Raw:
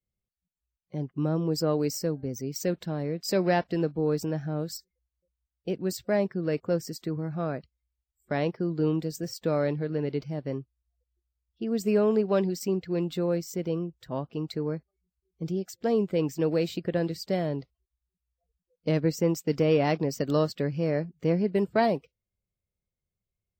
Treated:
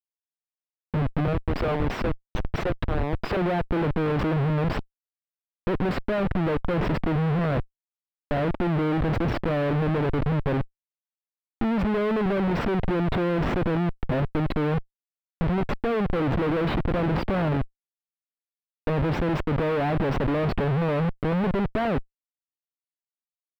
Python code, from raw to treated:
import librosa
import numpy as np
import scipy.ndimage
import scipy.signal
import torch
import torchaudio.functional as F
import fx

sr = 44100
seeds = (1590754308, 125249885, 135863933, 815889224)

y = fx.highpass(x, sr, hz=1000.0, slope=12, at=(1.27, 3.37))
y = fx.schmitt(y, sr, flips_db=-39.5)
y = fx.air_absorb(y, sr, metres=480.0)
y = F.gain(torch.from_numpy(y), 7.5).numpy()